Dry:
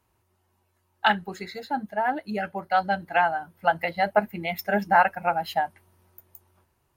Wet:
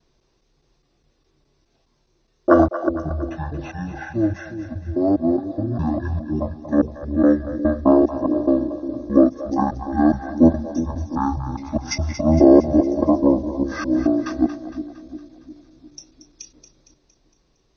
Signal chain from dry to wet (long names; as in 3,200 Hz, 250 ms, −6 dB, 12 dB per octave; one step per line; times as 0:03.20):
slices reordered back to front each 81 ms, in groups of 2
change of speed 0.392×
echo with a time of its own for lows and highs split 460 Hz, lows 354 ms, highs 230 ms, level −11 dB
level +6 dB